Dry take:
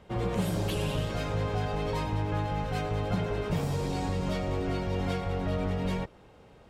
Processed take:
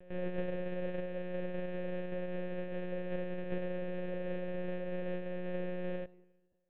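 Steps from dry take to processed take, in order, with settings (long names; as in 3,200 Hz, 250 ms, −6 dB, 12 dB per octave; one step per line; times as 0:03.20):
samples sorted by size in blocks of 128 samples
noise gate −41 dBFS, range −22 dB
formant filter e
parametric band 250 Hz +13 dB 0.25 octaves
mains-hum notches 50/100/150/200/250/300 Hz
hollow resonant body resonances 350/590/850/1,500 Hz, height 11 dB, ringing for 25 ms
echo ahead of the sound 163 ms −19 dB
on a send at −21 dB: convolution reverb RT60 1.4 s, pre-delay 6 ms
on the sum: one-pitch LPC vocoder at 8 kHz 180 Hz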